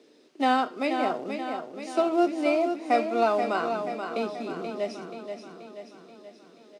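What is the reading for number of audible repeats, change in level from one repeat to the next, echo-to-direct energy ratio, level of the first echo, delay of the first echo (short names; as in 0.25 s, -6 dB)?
6, -5.0 dB, -5.5 dB, -7.0 dB, 0.481 s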